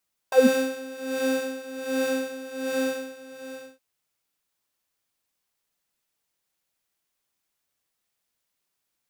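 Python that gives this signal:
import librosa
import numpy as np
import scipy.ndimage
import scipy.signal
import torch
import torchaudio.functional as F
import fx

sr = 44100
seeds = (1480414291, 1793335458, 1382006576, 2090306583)

y = fx.sub_patch_tremolo(sr, seeds[0], note=72, wave='square', wave2='saw', interval_st=-12, detune_cents=30, level2_db=-2.5, sub_db=-10.5, noise_db=-15, kind='highpass', cutoff_hz=120.0, q=5.7, env_oct=3.0, env_decay_s=0.16, env_sustain_pct=20, attack_ms=3.0, decay_s=0.37, sustain_db=-5.0, release_s=1.07, note_s=2.4, lfo_hz=1.3, tremolo_db=14.0)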